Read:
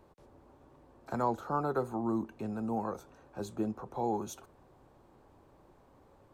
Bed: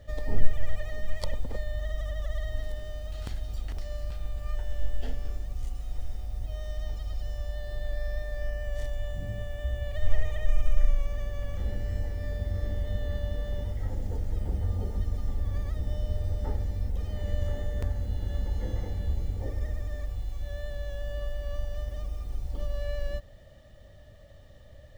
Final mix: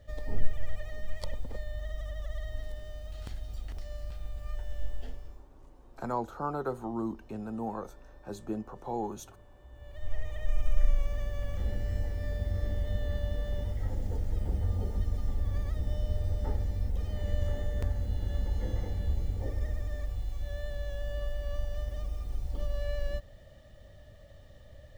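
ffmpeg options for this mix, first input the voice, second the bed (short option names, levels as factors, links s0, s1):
-filter_complex "[0:a]adelay=4900,volume=0.841[s0];[1:a]volume=6.68,afade=t=out:st=4.86:d=0.61:silence=0.133352,afade=t=in:st=9.69:d=1.3:silence=0.0841395[s1];[s0][s1]amix=inputs=2:normalize=0"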